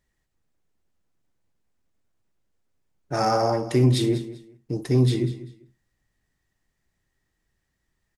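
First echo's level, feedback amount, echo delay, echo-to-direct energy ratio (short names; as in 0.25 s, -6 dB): -15.5 dB, 23%, 0.196 s, -15.5 dB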